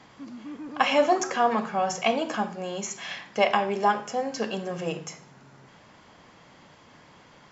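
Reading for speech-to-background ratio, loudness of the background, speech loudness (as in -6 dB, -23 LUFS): 15.0 dB, -41.5 LUFS, -26.5 LUFS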